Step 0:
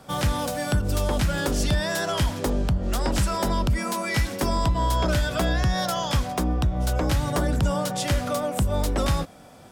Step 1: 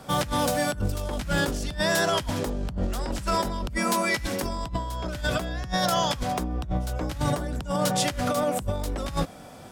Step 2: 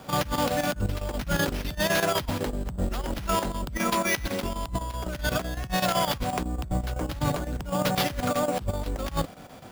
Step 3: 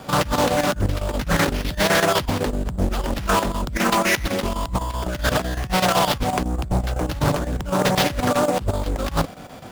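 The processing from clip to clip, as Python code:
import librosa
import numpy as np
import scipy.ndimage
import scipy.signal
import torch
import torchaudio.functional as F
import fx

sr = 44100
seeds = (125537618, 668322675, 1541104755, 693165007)

y1 = fx.over_compress(x, sr, threshold_db=-26.0, ratio=-0.5)
y2 = fx.sample_hold(y1, sr, seeds[0], rate_hz=8100.0, jitter_pct=0)
y2 = fx.chopper(y2, sr, hz=7.9, depth_pct=65, duty_pct=80)
y3 = fx.doppler_dist(y2, sr, depth_ms=0.73)
y3 = F.gain(torch.from_numpy(y3), 6.5).numpy()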